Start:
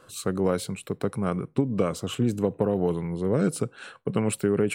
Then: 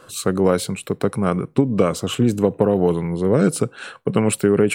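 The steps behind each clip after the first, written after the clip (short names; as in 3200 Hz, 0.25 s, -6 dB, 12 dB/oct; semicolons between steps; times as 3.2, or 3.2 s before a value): low shelf 130 Hz -3.5 dB; gain +8 dB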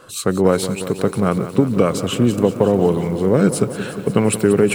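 lo-fi delay 0.18 s, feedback 80%, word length 7-bit, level -13 dB; gain +1.5 dB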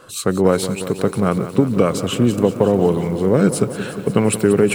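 nothing audible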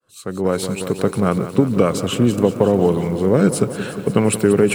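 opening faded in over 0.79 s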